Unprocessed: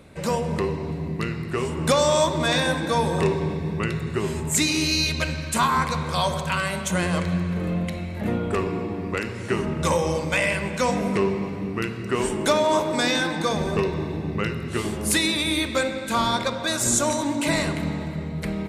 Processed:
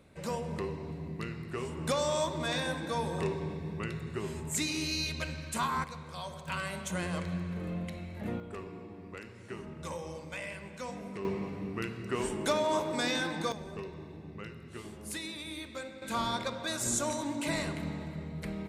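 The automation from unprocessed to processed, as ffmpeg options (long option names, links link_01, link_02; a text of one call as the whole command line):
ffmpeg -i in.wav -af "asetnsamples=nb_out_samples=441:pad=0,asendcmd='5.84 volume volume -18dB;6.48 volume volume -11dB;8.4 volume volume -18dB;11.25 volume volume -9dB;13.52 volume volume -18dB;16.02 volume volume -10dB',volume=-11dB" out.wav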